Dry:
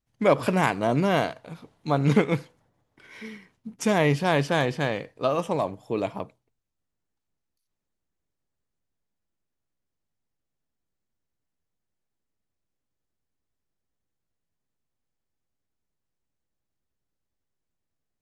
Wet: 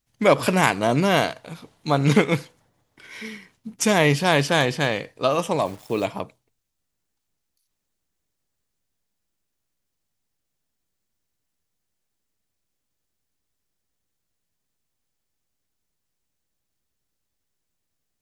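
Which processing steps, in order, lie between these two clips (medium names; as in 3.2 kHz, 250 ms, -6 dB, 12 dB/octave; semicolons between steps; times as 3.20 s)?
treble shelf 2.3 kHz +8.5 dB; 5.65–6.05 s: word length cut 8-bit, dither none; trim +2.5 dB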